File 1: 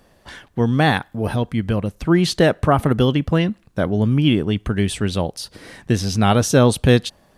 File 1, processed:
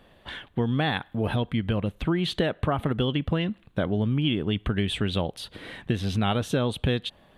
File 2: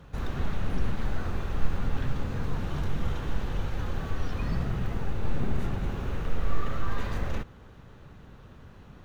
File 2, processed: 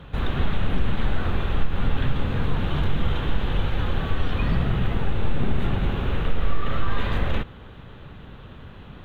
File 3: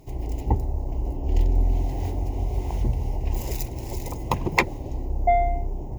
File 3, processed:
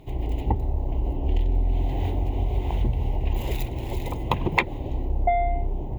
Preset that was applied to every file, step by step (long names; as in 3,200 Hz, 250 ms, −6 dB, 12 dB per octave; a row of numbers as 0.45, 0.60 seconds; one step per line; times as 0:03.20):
downward compressor 6 to 1, threshold −20 dBFS
high shelf with overshoot 4,300 Hz −7.5 dB, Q 3
loudness normalisation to −27 LKFS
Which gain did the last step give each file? −1.5, +7.0, +2.5 decibels